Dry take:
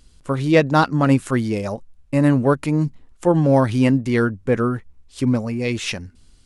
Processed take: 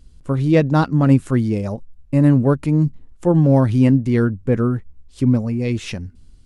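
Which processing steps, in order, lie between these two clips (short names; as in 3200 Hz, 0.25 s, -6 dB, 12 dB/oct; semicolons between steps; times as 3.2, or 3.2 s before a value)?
low shelf 390 Hz +12 dB; gain -6 dB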